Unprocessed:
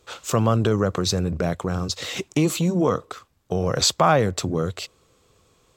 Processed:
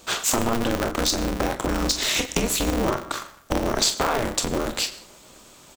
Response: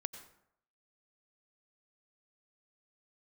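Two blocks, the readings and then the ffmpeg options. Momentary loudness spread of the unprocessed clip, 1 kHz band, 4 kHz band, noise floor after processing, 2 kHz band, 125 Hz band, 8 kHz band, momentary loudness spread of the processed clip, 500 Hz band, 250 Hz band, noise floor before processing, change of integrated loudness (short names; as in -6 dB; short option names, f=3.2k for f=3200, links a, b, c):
11 LU, -1.5 dB, +2.5 dB, -50 dBFS, +3.0 dB, -8.5 dB, +4.5 dB, 7 LU, -3.0 dB, -2.5 dB, -62 dBFS, -1.5 dB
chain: -filter_complex "[0:a]highshelf=f=4.8k:g=7.5,acompressor=threshold=-30dB:ratio=6,aecho=1:1:28|44:0.316|0.316,asplit=2[a][b];[1:a]atrim=start_sample=2205,lowshelf=f=180:g=-9[c];[b][c]afir=irnorm=-1:irlink=0,volume=4dB[d];[a][d]amix=inputs=2:normalize=0,aeval=exprs='val(0)*sgn(sin(2*PI*120*n/s))':c=same,volume=2.5dB"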